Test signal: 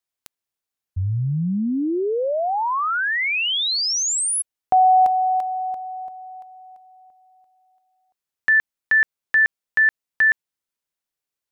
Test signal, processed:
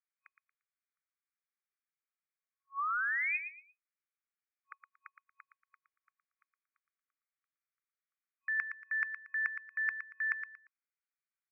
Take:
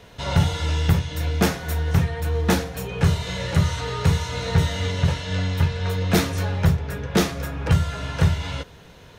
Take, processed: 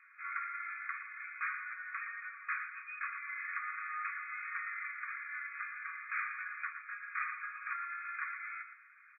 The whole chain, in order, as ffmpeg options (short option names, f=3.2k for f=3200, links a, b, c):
-af "afftfilt=real='re*between(b*sr/4096,1100,2500)':imag='im*between(b*sr/4096,1100,2500)':win_size=4096:overlap=0.75,areverse,acompressor=threshold=-28dB:ratio=16:attack=23:release=74:knee=6:detection=rms,areverse,aecho=1:1:116|232|348:0.355|0.0923|0.024,volume=-4.5dB"